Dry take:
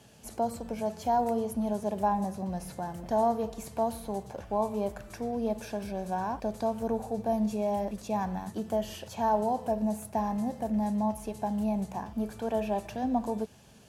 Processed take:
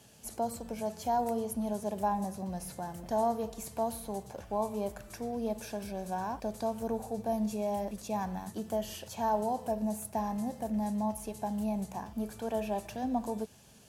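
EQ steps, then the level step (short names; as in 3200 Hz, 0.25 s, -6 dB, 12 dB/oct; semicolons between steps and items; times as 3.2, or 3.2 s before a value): high shelf 5100 Hz +8 dB; -3.5 dB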